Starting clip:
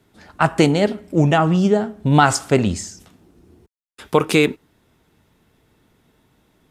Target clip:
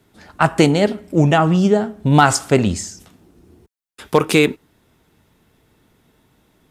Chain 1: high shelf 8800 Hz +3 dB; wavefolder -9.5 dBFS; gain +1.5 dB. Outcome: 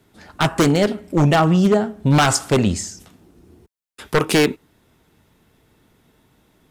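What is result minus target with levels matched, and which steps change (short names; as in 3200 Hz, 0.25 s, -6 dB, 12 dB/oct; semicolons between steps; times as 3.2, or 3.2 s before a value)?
wavefolder: distortion +27 dB
change: wavefolder -2.5 dBFS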